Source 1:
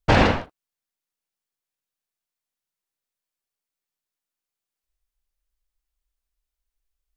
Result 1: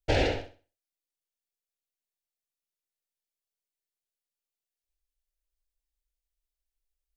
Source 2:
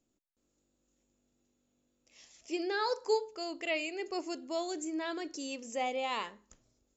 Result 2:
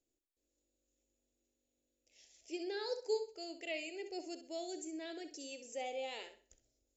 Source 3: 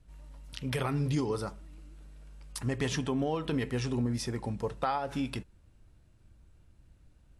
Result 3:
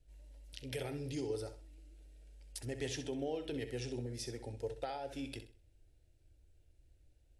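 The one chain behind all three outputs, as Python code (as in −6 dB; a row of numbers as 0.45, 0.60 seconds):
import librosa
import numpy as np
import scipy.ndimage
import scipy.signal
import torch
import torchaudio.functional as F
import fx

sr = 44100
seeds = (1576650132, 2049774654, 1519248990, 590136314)

y = fx.fixed_phaser(x, sr, hz=460.0, stages=4)
y = fx.room_flutter(y, sr, wall_m=11.1, rt60_s=0.36)
y = y * librosa.db_to_amplitude(-5.5)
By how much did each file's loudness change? −8.5, −7.0, −9.0 LU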